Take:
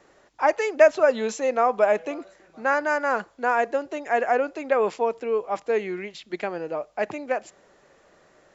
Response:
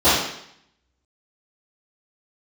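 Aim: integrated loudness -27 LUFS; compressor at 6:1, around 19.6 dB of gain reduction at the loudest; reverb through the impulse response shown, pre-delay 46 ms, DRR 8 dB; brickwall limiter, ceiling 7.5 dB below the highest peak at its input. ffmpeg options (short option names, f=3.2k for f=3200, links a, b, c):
-filter_complex "[0:a]acompressor=threshold=-32dB:ratio=6,alimiter=level_in=3.5dB:limit=-24dB:level=0:latency=1,volume=-3.5dB,asplit=2[a][b];[1:a]atrim=start_sample=2205,adelay=46[c];[b][c]afir=irnorm=-1:irlink=0,volume=-32dB[d];[a][d]amix=inputs=2:normalize=0,volume=10.5dB"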